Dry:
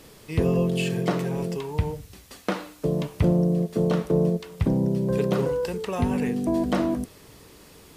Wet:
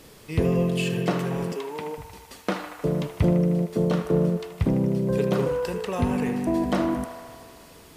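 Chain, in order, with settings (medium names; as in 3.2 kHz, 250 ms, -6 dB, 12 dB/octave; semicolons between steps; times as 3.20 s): 1.52–1.98 s: high-pass 240 Hz 24 dB/octave; feedback echo behind a band-pass 77 ms, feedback 77%, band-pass 1.4 kHz, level -8 dB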